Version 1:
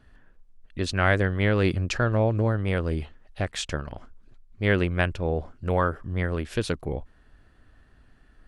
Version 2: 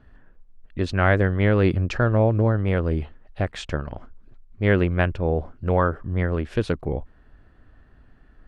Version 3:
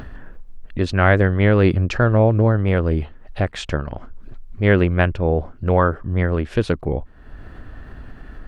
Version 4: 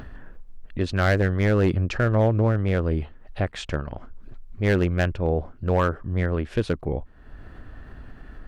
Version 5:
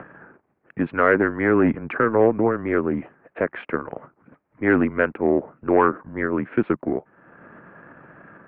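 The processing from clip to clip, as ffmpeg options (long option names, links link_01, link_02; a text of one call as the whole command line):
ffmpeg -i in.wav -af "lowpass=frequency=1600:poles=1,volume=4dB" out.wav
ffmpeg -i in.wav -af "acompressor=mode=upward:threshold=-27dB:ratio=2.5,volume=4dB" out.wav
ffmpeg -i in.wav -af "volume=9dB,asoftclip=hard,volume=-9dB,volume=-4.5dB" out.wav
ffmpeg -i in.wav -af "aeval=exprs='if(lt(val(0),0),0.708*val(0),val(0))':channel_layout=same,highpass=frequency=300:width_type=q:width=0.5412,highpass=frequency=300:width_type=q:width=1.307,lowpass=frequency=2300:width_type=q:width=0.5176,lowpass=frequency=2300:width_type=q:width=0.7071,lowpass=frequency=2300:width_type=q:width=1.932,afreqshift=-110,volume=7.5dB" out.wav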